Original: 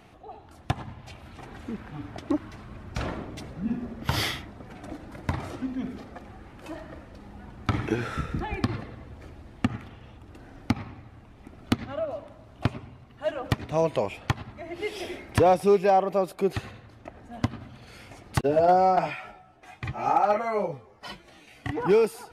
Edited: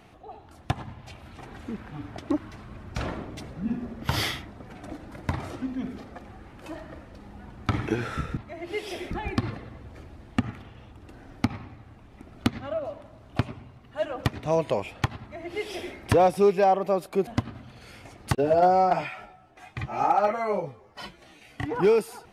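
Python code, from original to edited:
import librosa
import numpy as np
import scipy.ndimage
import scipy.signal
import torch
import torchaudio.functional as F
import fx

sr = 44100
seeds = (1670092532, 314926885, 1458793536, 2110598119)

y = fx.edit(x, sr, fx.duplicate(start_s=14.46, length_s=0.74, to_s=8.37),
    fx.cut(start_s=16.53, length_s=0.8), tone=tone)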